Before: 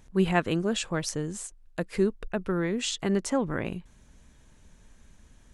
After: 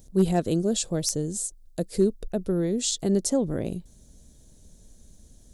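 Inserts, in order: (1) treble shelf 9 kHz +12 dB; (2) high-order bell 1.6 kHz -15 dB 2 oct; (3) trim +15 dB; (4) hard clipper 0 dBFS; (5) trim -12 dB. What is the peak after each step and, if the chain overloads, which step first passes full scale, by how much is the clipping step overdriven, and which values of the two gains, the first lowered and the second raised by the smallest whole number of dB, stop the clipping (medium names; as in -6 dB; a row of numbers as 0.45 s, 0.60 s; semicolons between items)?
-8.0 dBFS, -8.5 dBFS, +6.5 dBFS, 0.0 dBFS, -12.0 dBFS; step 3, 6.5 dB; step 3 +8 dB, step 5 -5 dB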